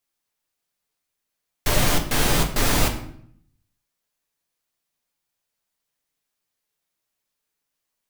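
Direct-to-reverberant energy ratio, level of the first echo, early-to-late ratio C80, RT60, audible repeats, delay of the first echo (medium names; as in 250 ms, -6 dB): 2.0 dB, no echo, 12.5 dB, 0.65 s, no echo, no echo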